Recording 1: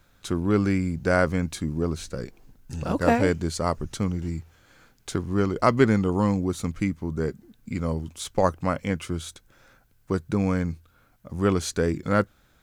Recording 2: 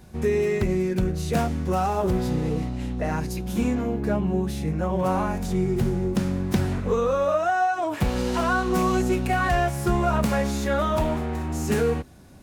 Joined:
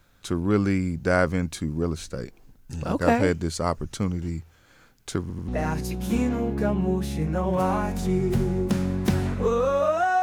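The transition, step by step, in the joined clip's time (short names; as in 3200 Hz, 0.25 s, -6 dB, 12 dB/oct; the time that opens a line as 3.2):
recording 1
5.21 stutter in place 0.09 s, 3 plays
5.48 switch to recording 2 from 2.94 s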